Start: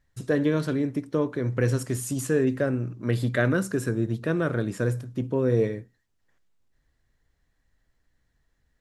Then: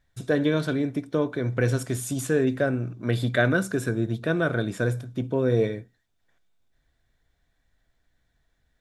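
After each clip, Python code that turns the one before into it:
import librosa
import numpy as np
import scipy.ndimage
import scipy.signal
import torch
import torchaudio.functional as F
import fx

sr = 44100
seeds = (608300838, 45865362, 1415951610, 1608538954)

y = fx.peak_eq(x, sr, hz=3500.0, db=6.0, octaves=0.25)
y = fx.small_body(y, sr, hz=(690.0, 1500.0, 2300.0, 3600.0), ring_ms=25, db=7)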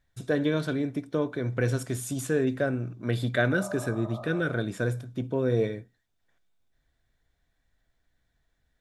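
y = fx.spec_repair(x, sr, seeds[0], start_s=3.52, length_s=0.94, low_hz=560.0, high_hz=1300.0, source='both')
y = F.gain(torch.from_numpy(y), -3.0).numpy()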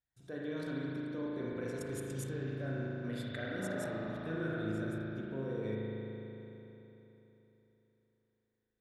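y = fx.highpass(x, sr, hz=63.0, slope=6)
y = fx.level_steps(y, sr, step_db=18)
y = fx.rev_spring(y, sr, rt60_s=3.6, pass_ms=(37,), chirp_ms=35, drr_db=-5.0)
y = F.gain(torch.from_numpy(y), -7.0).numpy()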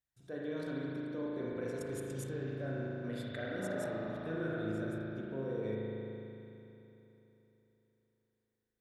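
y = fx.dynamic_eq(x, sr, hz=560.0, q=0.97, threshold_db=-48.0, ratio=4.0, max_db=4)
y = F.gain(torch.from_numpy(y), -2.0).numpy()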